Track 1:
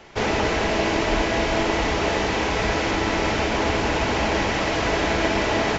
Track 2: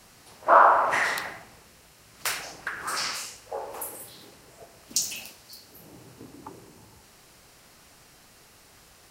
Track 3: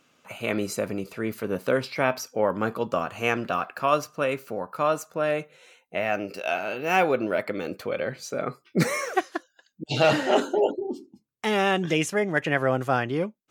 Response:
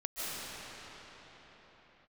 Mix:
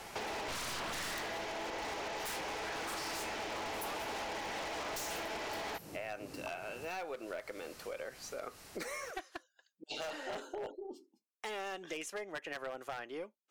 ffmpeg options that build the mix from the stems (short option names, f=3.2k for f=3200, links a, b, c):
-filter_complex "[0:a]equalizer=f=820:t=o:w=0.32:g=4.5,volume=-1dB[a];[1:a]volume=2.5dB[b];[2:a]highpass=260,volume=-8dB,asplit=2[c][d];[d]apad=whole_len=401571[e];[b][e]sidechaincompress=threshold=-34dB:ratio=8:attack=6.1:release=306[f];[a][c]amix=inputs=2:normalize=0,bass=f=250:g=-14,treble=f=4k:g=1,alimiter=limit=-19.5dB:level=0:latency=1:release=324,volume=0dB[g];[f][g]amix=inputs=2:normalize=0,aeval=exprs='(tanh(6.31*val(0)+0.5)-tanh(0.5))/6.31':c=same,aeval=exprs='0.0422*(abs(mod(val(0)/0.0422+3,4)-2)-1)':c=same,acompressor=threshold=-38dB:ratio=6"